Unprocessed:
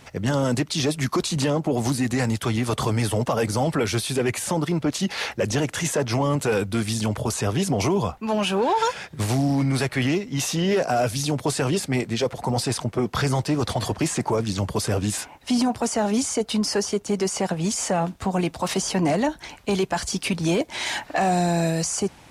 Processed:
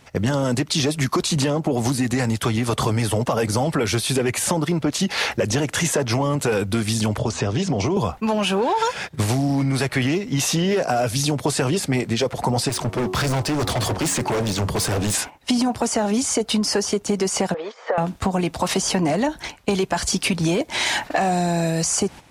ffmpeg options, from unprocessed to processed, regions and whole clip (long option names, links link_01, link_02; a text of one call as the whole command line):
ffmpeg -i in.wav -filter_complex "[0:a]asettb=1/sr,asplit=3[link_01][link_02][link_03];[link_01]atrim=end=7.184[link_04];[link_02]atrim=start=7.18:end=7.97,asetpts=PTS-STARTPTS,afade=type=in:duration=0.004:curve=qsin,afade=type=out:start_time=0.786:duration=0.004:curve=qsin,lowpass=frequency=7100:width=0.5412,lowpass=frequency=7100:width=1.3066,bandreject=frequency=82.74:width_type=h:width=4,bandreject=frequency=165.48:width_type=h:width=4,bandreject=frequency=248.22:width_type=h:width=4,acrossover=split=600|3800[link_05][link_06][link_07];[link_05]acompressor=threshold=-24dB:ratio=4[link_08];[link_06]acompressor=threshold=-36dB:ratio=4[link_09];[link_07]acompressor=threshold=-39dB:ratio=4[link_10];[link_08][link_09][link_10]amix=inputs=3:normalize=0[link_11];[link_03]atrim=start=7.966[link_12];[link_04][link_11]acrossfade=duration=0.004:curve1=hsin:curve2=qsin[link_13];[link_13][link_12]acrossfade=duration=0.004:curve1=qsin:curve2=hsin,asettb=1/sr,asplit=3[link_14][link_15][link_16];[link_14]atrim=end=12.694[link_17];[link_15]atrim=start=12.69:end=15.15,asetpts=PTS-STARTPTS,afade=type=in:duration=0.004:curve=qsin,afade=type=out:start_time=2.456:duration=0.004:curve=qsin,highpass=frequency=49:width=0.5412,highpass=frequency=49:width=1.3066,bandreject=frequency=92.33:width_type=h:width=4,bandreject=frequency=184.66:width_type=h:width=4,bandreject=frequency=276.99:width_type=h:width=4,bandreject=frequency=369.32:width_type=h:width=4,bandreject=frequency=461.65:width_type=h:width=4,bandreject=frequency=553.98:width_type=h:width=4,bandreject=frequency=646.31:width_type=h:width=4,bandreject=frequency=738.64:width_type=h:width=4,bandreject=frequency=830.97:width_type=h:width=4,bandreject=frequency=923.3:width_type=h:width=4,bandreject=frequency=1015.63:width_type=h:width=4,bandreject=frequency=1107.96:width_type=h:width=4,bandreject=frequency=1200.29:width_type=h:width=4,bandreject=frequency=1292.62:width_type=h:width=4,asoftclip=type=hard:threshold=-27dB[link_18];[link_16]atrim=start=15.146[link_19];[link_17][link_18]acrossfade=duration=0.004:curve1=hsin:curve2=qsin[link_20];[link_20][link_19]acrossfade=duration=0.004:curve1=qsin:curve2=hsin,asettb=1/sr,asplit=3[link_21][link_22][link_23];[link_21]atrim=end=17.544[link_24];[link_22]atrim=start=17.54:end=17.98,asetpts=PTS-STARTPTS,afade=type=in:duration=0.004:curve=qsin,afade=type=out:start_time=0.436:duration=0.004:curve=qsin,acompressor=threshold=-25dB:ratio=4:attack=3.2:release=140:knee=1:detection=peak,highpass=frequency=420:width=0.5412,highpass=frequency=420:width=1.3066,equalizer=frequency=480:width_type=q:width=4:gain=10,equalizer=frequency=1200:width_type=q:width=4:gain=5,equalizer=frequency=1800:width_type=q:width=4:gain=4,equalizer=frequency=2700:width_type=q:width=4:gain=-9,lowpass=frequency=3300:width=0.5412,lowpass=frequency=3300:width=1.3066[link_25];[link_23]atrim=start=17.976[link_26];[link_24][link_25]acrossfade=duration=0.004:curve1=hsin:curve2=qsin[link_27];[link_27][link_26]acrossfade=duration=0.004:curve1=qsin:curve2=hsin,agate=range=-11dB:threshold=-37dB:ratio=16:detection=peak,acompressor=threshold=-26dB:ratio=5,volume=8dB" out.wav